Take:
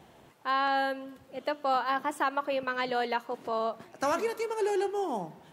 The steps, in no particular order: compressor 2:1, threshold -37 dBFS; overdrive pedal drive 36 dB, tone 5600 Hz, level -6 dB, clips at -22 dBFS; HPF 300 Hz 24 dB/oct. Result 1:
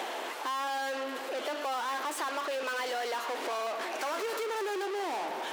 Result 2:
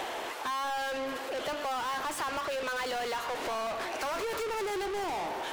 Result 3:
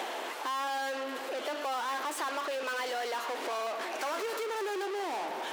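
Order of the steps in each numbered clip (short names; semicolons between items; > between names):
overdrive pedal > compressor > HPF; HPF > overdrive pedal > compressor; overdrive pedal > HPF > compressor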